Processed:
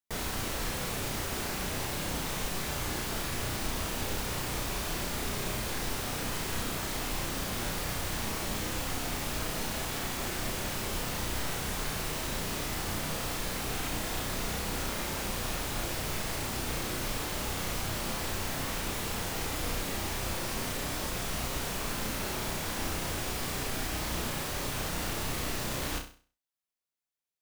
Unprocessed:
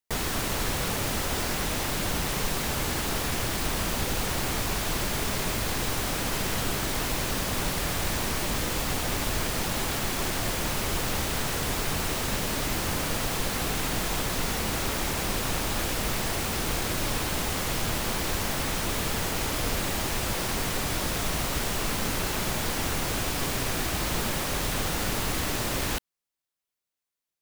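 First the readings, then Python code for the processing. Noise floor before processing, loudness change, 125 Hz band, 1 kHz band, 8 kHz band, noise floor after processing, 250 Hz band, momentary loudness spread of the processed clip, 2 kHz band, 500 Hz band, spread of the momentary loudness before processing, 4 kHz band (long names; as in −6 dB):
below −85 dBFS, −5.5 dB, −5.5 dB, −5.5 dB, −5.5 dB, −58 dBFS, −5.0 dB, 0 LU, −5.5 dB, −5.5 dB, 0 LU, −5.5 dB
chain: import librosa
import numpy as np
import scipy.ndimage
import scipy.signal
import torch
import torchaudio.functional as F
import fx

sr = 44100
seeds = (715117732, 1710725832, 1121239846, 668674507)

y = fx.room_flutter(x, sr, wall_m=5.6, rt60_s=0.4)
y = y * 10.0 ** (-7.0 / 20.0)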